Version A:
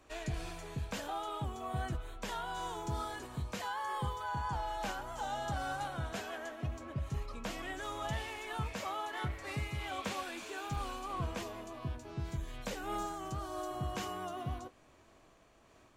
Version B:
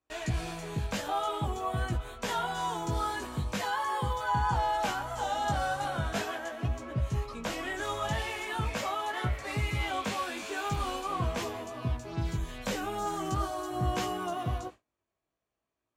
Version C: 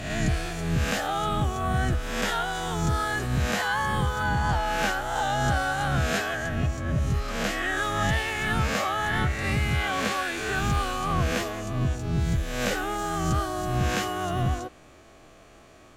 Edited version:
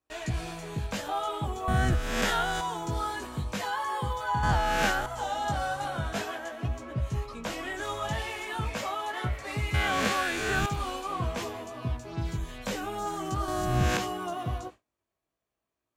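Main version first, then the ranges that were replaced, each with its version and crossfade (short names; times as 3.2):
B
1.68–2.61 from C
4.43–5.06 from C
9.74–10.66 from C
13.48–13.97 from C
not used: A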